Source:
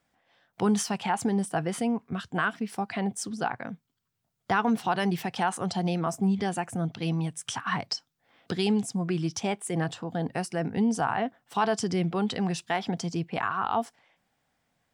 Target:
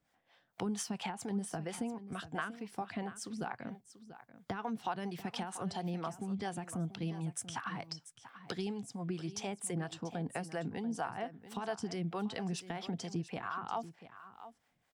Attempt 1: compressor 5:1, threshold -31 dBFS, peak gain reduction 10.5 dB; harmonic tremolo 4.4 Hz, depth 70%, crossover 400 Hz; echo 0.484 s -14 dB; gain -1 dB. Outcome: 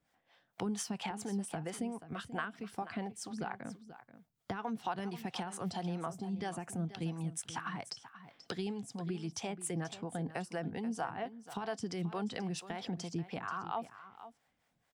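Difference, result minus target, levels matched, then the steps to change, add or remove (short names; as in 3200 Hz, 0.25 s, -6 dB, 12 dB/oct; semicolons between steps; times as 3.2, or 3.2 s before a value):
echo 0.204 s early
change: echo 0.688 s -14 dB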